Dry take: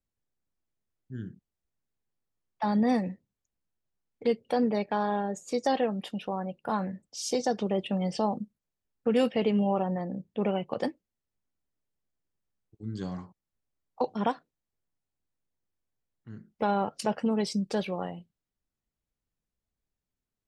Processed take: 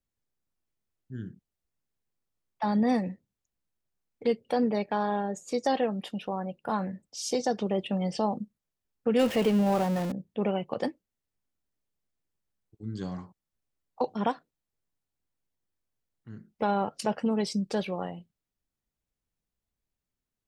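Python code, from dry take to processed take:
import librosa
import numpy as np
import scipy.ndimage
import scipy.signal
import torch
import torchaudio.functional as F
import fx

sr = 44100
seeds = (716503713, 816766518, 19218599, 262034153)

y = fx.zero_step(x, sr, step_db=-31.5, at=(9.19, 10.12))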